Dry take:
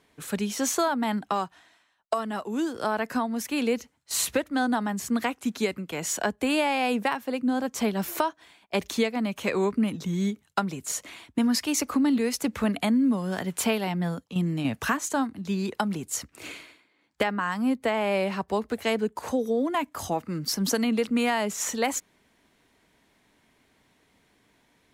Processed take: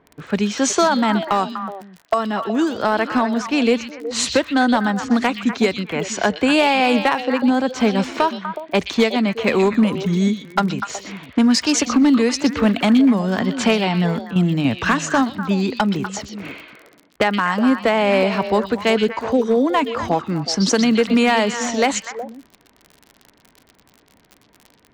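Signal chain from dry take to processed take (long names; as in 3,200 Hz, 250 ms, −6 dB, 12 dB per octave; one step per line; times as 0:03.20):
low-pass that shuts in the quiet parts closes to 1,400 Hz, open at −20.5 dBFS
low-pass filter 7,900 Hz 24 dB per octave
surface crackle 38 per second −39 dBFS
on a send: echo through a band-pass that steps 123 ms, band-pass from 3,700 Hz, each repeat −1.4 octaves, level −3.5 dB
on the sum: gain into a clipping stage and back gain 17.5 dB
level +9 dB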